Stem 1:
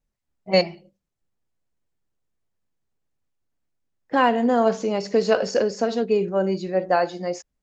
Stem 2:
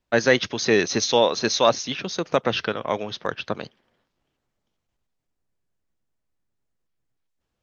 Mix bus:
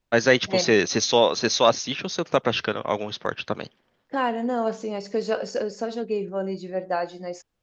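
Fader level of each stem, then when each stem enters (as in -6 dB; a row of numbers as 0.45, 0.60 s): -6.0, 0.0 dB; 0.00, 0.00 s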